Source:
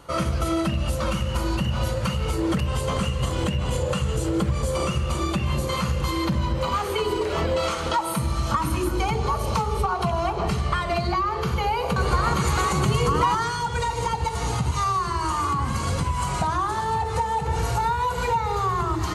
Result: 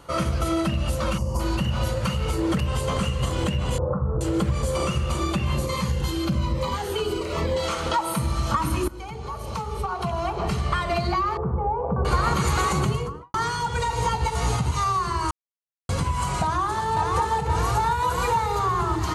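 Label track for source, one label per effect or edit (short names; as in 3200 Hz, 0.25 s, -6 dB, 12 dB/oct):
1.180000	1.400000	spectral gain 1200–4500 Hz -19 dB
3.780000	4.210000	steep low-pass 1300 Hz 48 dB/oct
5.660000	7.690000	cascading phaser falling 1.2 Hz
8.880000	10.760000	fade in, from -15.5 dB
11.370000	12.050000	LPF 1000 Hz 24 dB/oct
12.700000	13.340000	studio fade out
13.910000	14.560000	doubler 16 ms -4 dB
15.310000	15.890000	mute
16.430000	16.870000	echo throw 0.53 s, feedback 80%, level -2.5 dB
17.910000	18.590000	high shelf 8000 Hz +8 dB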